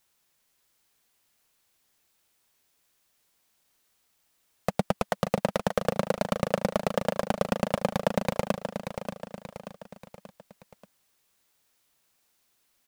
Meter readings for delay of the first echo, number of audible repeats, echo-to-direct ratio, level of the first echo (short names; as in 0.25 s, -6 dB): 0.583 s, 4, -7.0 dB, -8.0 dB